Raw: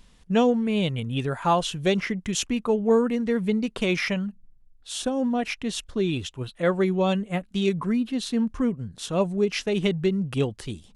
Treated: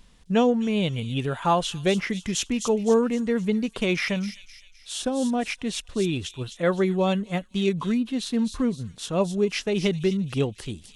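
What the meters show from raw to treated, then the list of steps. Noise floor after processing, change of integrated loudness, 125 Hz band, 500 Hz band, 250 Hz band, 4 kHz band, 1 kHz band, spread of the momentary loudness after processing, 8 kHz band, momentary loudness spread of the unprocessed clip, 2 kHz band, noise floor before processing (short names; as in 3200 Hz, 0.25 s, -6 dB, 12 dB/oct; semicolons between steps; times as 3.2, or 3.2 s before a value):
-52 dBFS, 0.0 dB, 0.0 dB, 0.0 dB, 0.0 dB, +0.5 dB, 0.0 dB, 8 LU, +1.5 dB, 7 LU, 0.0 dB, -56 dBFS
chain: thin delay 0.257 s, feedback 44%, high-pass 4500 Hz, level -4.5 dB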